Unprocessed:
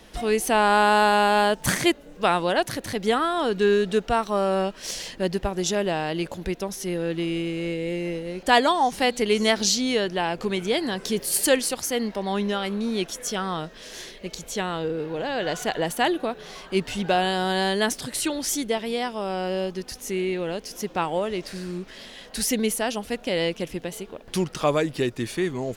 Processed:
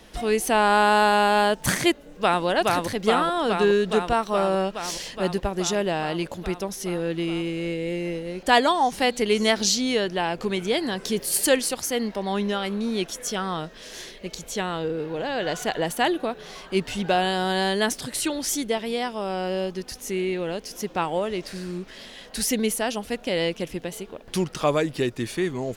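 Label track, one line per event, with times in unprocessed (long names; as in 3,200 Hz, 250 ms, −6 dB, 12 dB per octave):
1.910000	2.450000	delay throw 420 ms, feedback 80%, level −2 dB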